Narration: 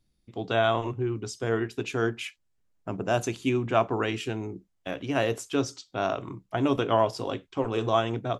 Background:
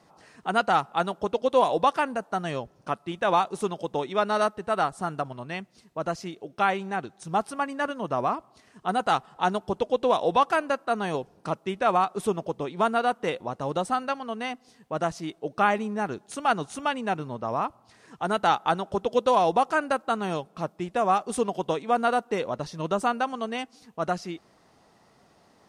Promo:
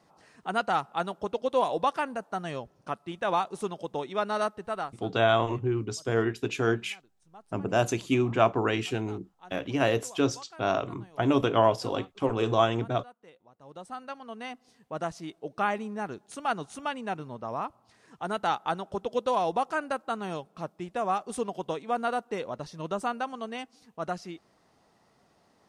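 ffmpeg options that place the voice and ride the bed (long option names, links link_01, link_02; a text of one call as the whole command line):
ffmpeg -i stem1.wav -i stem2.wav -filter_complex "[0:a]adelay=4650,volume=1dB[link_01];[1:a]volume=16dB,afade=type=out:start_time=4.6:duration=0.49:silence=0.0841395,afade=type=in:start_time=13.56:duration=1.09:silence=0.0944061[link_02];[link_01][link_02]amix=inputs=2:normalize=0" out.wav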